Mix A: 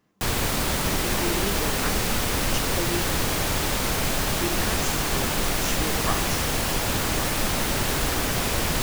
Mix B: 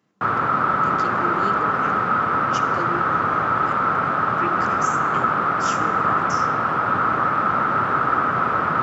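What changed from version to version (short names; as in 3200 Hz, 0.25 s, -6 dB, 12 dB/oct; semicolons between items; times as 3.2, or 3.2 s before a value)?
background: add synth low-pass 1300 Hz, resonance Q 11; master: add HPF 110 Hz 24 dB/oct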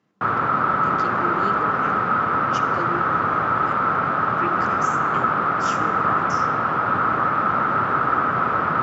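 master: add air absorption 61 m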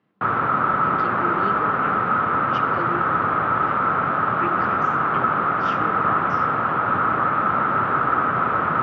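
master: add LPF 3700 Hz 24 dB/oct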